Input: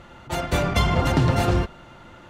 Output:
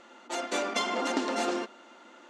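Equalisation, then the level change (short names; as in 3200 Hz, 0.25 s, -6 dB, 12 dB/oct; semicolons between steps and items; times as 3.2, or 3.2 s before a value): brick-wall FIR high-pass 210 Hz; synth low-pass 7200 Hz, resonance Q 1.9; -6.0 dB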